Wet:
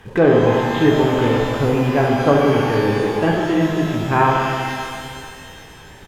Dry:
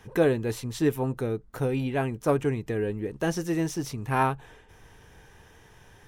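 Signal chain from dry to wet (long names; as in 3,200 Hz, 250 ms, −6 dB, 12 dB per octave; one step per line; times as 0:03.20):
0:00.74–0:01.46: linear delta modulator 64 kbit/s, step −28.5 dBFS
on a send: loudspeakers that aren't time-aligned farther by 24 metres −9 dB, 52 metres −11 dB
on the sum: downsampling to 8,000 Hz
in parallel at −8 dB: log-companded quantiser 4 bits
on the sum: treble cut that deepens with the level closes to 2,100 Hz, closed at −18 dBFS
reverb with rising layers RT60 2.3 s, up +12 semitones, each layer −8 dB, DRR 0.5 dB
level +5 dB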